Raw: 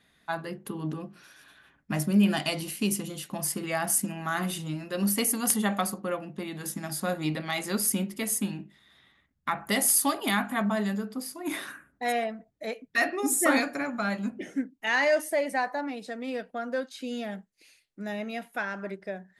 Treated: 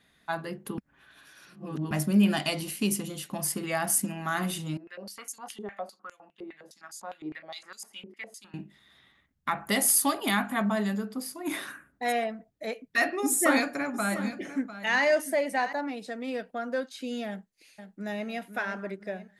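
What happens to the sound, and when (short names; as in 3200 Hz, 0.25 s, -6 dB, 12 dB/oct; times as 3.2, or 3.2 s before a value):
0.78–1.91 reverse
4.77–8.54 stepped band-pass 9.8 Hz 390–6700 Hz
13.24–15.73 echo 0.699 s -13.5 dB
17.28–18.27 echo throw 0.5 s, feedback 45%, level -9 dB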